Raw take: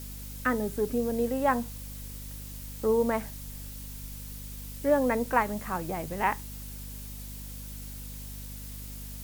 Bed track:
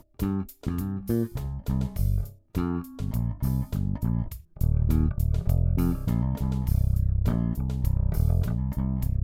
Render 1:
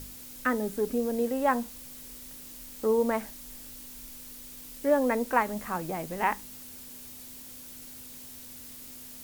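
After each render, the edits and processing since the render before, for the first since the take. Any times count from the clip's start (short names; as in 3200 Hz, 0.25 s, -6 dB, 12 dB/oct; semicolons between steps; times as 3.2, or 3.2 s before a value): de-hum 50 Hz, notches 4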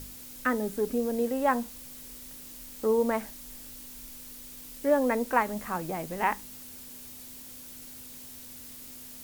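nothing audible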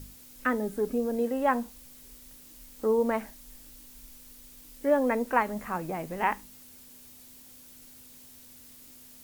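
noise print and reduce 6 dB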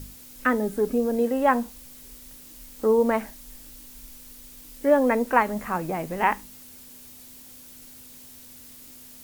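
gain +5 dB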